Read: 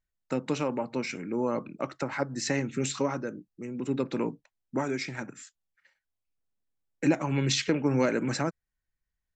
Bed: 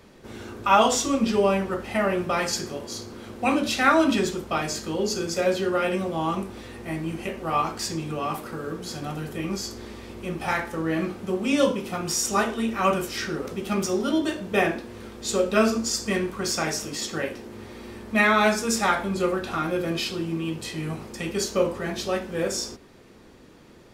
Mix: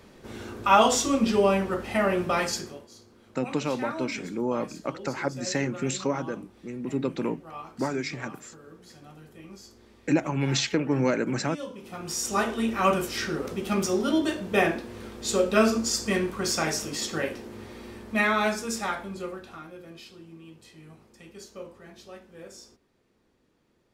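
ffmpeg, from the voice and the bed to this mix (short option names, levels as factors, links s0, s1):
-filter_complex "[0:a]adelay=3050,volume=1.12[s0];[1:a]volume=5.96,afade=t=out:st=2.38:d=0.5:silence=0.158489,afade=t=in:st=11.7:d=0.93:silence=0.158489,afade=t=out:st=17.3:d=2.42:silence=0.125893[s1];[s0][s1]amix=inputs=2:normalize=0"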